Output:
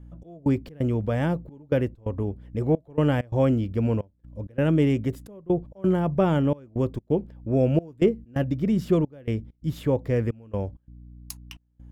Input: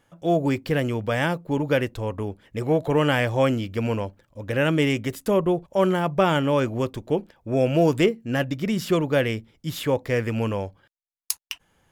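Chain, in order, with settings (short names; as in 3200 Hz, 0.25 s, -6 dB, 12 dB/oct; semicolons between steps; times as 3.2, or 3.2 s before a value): hum 60 Hz, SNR 24 dB; step gate "xx..xx.xxxx" 131 bpm -24 dB; tilt shelf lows +8 dB, about 750 Hz; gain -4.5 dB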